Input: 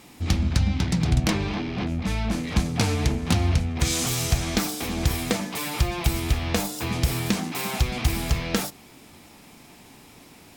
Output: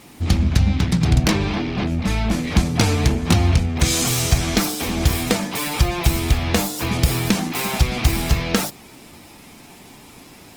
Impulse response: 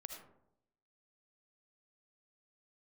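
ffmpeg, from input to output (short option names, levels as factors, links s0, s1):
-af "volume=1.88" -ar 48000 -c:a libopus -b:a 20k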